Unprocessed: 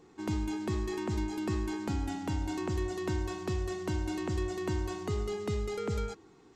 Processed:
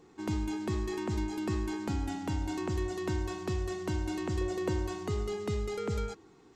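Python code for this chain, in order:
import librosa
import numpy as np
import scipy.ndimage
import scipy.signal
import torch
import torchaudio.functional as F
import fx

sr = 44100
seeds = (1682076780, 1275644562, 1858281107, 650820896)

y = fx.peak_eq(x, sr, hz=500.0, db=11.5, octaves=0.41, at=(4.41, 4.87))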